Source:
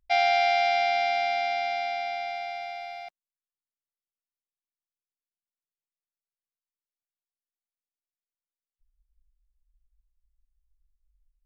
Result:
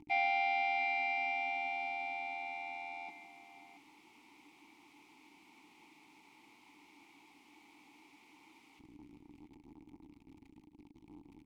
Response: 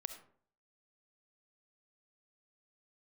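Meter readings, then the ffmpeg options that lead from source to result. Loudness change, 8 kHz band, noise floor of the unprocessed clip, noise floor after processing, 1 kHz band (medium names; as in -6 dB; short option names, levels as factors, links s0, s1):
-9.5 dB, no reading, under -85 dBFS, -64 dBFS, -9.5 dB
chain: -filter_complex "[0:a]aeval=exprs='val(0)+0.5*0.0188*sgn(val(0))':c=same,asplit=3[s0][s1][s2];[s0]bandpass=f=300:t=q:w=8,volume=1[s3];[s1]bandpass=f=870:t=q:w=8,volume=0.501[s4];[s2]bandpass=f=2240:t=q:w=8,volume=0.355[s5];[s3][s4][s5]amix=inputs=3:normalize=0,aecho=1:1:155|684:0.282|0.188,volume=1.88"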